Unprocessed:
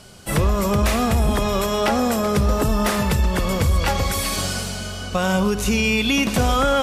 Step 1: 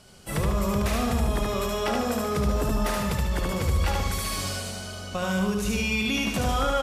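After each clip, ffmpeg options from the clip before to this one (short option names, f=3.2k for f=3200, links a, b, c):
-af "aecho=1:1:74|148|222|296|370|444:0.708|0.311|0.137|0.0603|0.0265|0.0117,volume=-8.5dB"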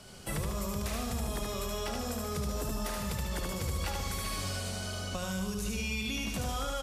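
-filter_complex "[0:a]acrossover=split=110|4000[a][b][c];[a]acompressor=threshold=-39dB:ratio=4[d];[b]acompressor=threshold=-39dB:ratio=4[e];[c]acompressor=threshold=-43dB:ratio=4[f];[d][e][f]amix=inputs=3:normalize=0,volume=1.5dB"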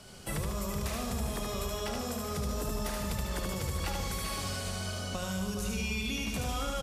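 -filter_complex "[0:a]asplit=2[a][b];[b]adelay=419.8,volume=-8dB,highshelf=f=4k:g=-9.45[c];[a][c]amix=inputs=2:normalize=0"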